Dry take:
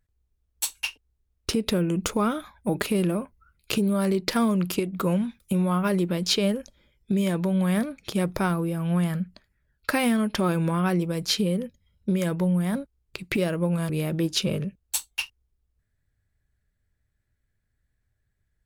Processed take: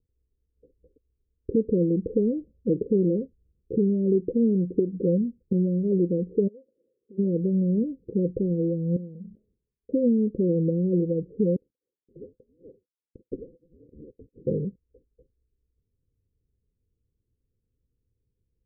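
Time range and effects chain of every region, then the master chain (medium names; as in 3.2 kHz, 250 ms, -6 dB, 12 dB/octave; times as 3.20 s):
6.47–7.17 s: formants flattened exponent 0.6 + high-pass 420 Hz + compression 4:1, threshold -48 dBFS
8.96–9.92 s: tilt EQ +2 dB/octave + feedback comb 210 Hz, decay 0.23 s, mix 70% + decay stretcher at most 100 dB/s
11.56–14.47 s: frequency inversion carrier 2.6 kHz + upward expansion, over -37 dBFS
whole clip: Chebyshev low-pass 520 Hz, order 8; bass shelf 260 Hz -11.5 dB; trim +8.5 dB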